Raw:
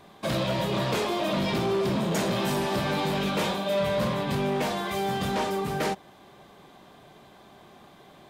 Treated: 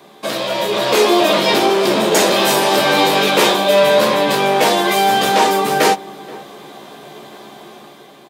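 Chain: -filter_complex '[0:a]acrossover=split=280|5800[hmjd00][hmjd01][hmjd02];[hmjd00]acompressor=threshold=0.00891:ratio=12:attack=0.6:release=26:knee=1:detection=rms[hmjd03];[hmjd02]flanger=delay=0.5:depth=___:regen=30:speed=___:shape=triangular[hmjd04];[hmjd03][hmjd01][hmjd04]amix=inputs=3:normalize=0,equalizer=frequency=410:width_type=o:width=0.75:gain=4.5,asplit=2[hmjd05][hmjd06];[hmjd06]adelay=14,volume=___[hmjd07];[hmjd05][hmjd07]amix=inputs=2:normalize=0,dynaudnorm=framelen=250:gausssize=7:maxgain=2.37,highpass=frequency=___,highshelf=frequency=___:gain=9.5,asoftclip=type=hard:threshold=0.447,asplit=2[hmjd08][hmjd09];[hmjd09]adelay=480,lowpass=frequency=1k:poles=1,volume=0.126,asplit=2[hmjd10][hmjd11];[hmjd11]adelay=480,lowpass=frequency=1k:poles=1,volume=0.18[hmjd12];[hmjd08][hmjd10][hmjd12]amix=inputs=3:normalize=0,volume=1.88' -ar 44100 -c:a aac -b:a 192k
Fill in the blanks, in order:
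8.9, 0.65, 0.531, 180, 4.9k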